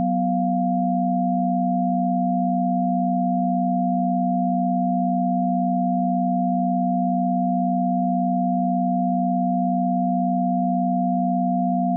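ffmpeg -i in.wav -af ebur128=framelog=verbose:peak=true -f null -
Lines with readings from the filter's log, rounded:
Integrated loudness:
  I:         -21.7 LUFS
  Threshold: -31.7 LUFS
Loudness range:
  LRA:         0.0 LU
  Threshold: -41.7 LUFS
  LRA low:   -21.7 LUFS
  LRA high:  -21.7 LUFS
True peak:
  Peak:      -13.1 dBFS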